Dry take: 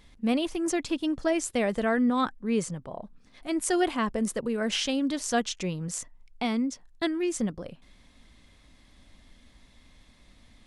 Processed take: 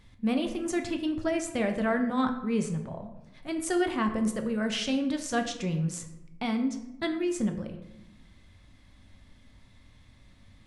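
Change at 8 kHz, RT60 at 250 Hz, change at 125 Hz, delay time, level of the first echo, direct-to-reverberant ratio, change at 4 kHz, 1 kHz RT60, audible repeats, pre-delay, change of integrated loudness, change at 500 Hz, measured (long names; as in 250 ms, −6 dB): −4.5 dB, 1.4 s, +4.0 dB, no echo audible, no echo audible, 5.0 dB, −3.0 dB, 0.90 s, no echo audible, 3 ms, −1.5 dB, −2.0 dB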